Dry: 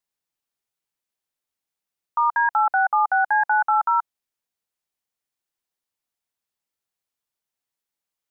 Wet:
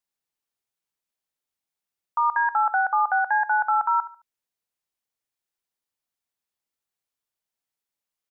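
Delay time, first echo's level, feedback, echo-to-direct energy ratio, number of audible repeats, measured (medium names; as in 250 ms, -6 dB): 72 ms, -15.0 dB, 30%, -14.5 dB, 2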